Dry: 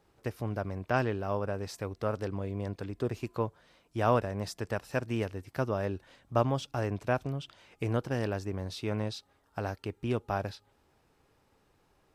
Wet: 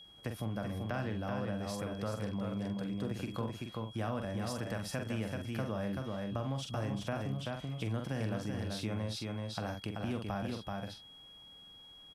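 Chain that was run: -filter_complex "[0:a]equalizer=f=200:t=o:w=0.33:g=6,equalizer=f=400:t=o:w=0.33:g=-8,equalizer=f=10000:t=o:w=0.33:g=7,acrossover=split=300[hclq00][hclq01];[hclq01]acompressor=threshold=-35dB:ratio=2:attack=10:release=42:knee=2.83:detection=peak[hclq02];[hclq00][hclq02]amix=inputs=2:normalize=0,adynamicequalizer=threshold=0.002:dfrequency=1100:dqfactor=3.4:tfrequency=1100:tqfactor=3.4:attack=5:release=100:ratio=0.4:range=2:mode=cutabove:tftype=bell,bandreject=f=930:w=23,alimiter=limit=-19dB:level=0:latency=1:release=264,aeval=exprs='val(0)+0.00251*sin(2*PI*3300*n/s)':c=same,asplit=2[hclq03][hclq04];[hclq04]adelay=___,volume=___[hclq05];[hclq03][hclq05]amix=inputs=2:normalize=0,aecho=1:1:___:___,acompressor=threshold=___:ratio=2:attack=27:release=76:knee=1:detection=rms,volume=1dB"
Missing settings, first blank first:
45, -7dB, 383, 0.562, -41dB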